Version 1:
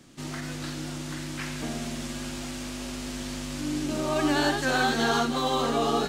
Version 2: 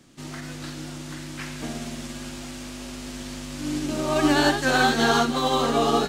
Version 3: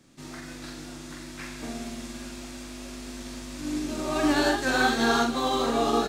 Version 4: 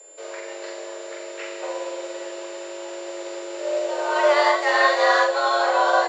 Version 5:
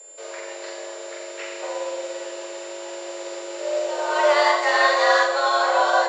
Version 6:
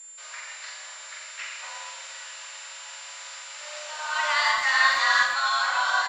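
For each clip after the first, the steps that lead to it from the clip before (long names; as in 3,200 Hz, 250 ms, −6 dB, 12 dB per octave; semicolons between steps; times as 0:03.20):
expander for the loud parts 1.5 to 1, over −35 dBFS; level +5.5 dB
notch filter 3,000 Hz, Q 15; double-tracking delay 43 ms −5 dB; level −4.5 dB
high-frequency loss of the air 160 metres; steady tone 6,900 Hz −51 dBFS; frequency shifter +300 Hz; level +6 dB
bass and treble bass −12 dB, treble +3 dB; on a send at −9 dB: convolution reverb RT60 0.30 s, pre-delay 86 ms
high-pass filter 1,100 Hz 24 dB per octave; far-end echo of a speakerphone 110 ms, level −9 dB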